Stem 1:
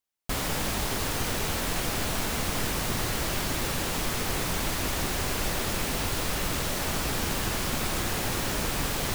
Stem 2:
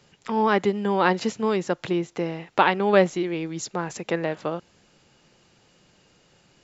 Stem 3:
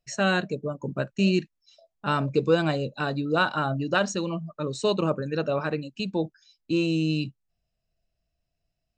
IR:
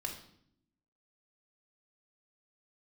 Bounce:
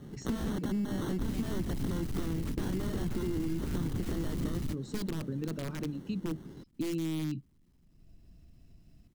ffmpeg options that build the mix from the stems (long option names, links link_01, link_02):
-filter_complex "[0:a]lowshelf=frequency=500:gain=7,aecho=1:1:1:0.38,asoftclip=type=hard:threshold=-32.5dB,adelay=900,volume=-5dB[link_01];[1:a]highpass=frequency=89:width=0.5412,highpass=frequency=89:width=1.3066,alimiter=limit=-10.5dB:level=0:latency=1:release=142,acrusher=samples=18:mix=1:aa=0.000001,volume=1.5dB,asplit=2[link_02][link_03];[2:a]acompressor=mode=upward:threshold=-31dB:ratio=2.5,aeval=exprs='(mod(7.94*val(0)+1,2)-1)/7.94':channel_layout=same,adelay=100,volume=-15.5dB[link_04];[link_03]apad=whole_len=443104[link_05];[link_01][link_05]sidechaingate=range=-40dB:threshold=-45dB:ratio=16:detection=peak[link_06];[link_02][link_04]amix=inputs=2:normalize=0,aeval=exprs='0.0596*(abs(mod(val(0)/0.0596+3,4)-2)-1)':channel_layout=same,acompressor=threshold=-35dB:ratio=3,volume=0dB[link_07];[link_06][link_07]amix=inputs=2:normalize=0,lowshelf=frequency=430:width_type=q:width=1.5:gain=12.5,acompressor=threshold=-30dB:ratio=6"